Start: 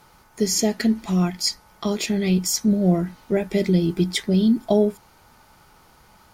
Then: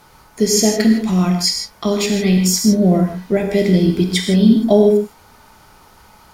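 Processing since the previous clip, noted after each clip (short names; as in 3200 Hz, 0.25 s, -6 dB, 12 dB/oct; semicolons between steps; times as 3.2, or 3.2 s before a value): non-linear reverb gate 0.18 s flat, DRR 2.5 dB; gain +4.5 dB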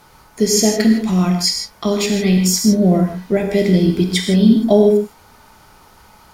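nothing audible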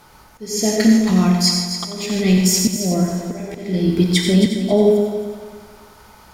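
auto swell 0.455 s; multi-head echo 90 ms, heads first and third, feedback 47%, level -10 dB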